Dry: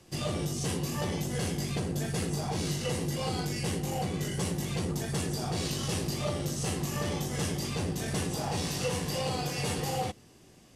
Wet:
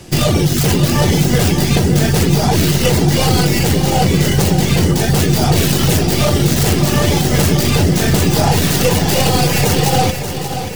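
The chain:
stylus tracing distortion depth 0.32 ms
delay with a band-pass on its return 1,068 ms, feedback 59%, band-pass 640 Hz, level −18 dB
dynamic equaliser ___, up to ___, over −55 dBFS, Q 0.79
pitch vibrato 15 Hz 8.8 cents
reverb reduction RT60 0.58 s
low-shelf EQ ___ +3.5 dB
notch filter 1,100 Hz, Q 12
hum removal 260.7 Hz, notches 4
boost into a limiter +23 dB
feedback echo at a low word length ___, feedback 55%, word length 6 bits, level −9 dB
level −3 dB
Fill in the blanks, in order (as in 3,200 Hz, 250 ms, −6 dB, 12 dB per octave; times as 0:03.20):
5,800 Hz, +5 dB, 150 Hz, 581 ms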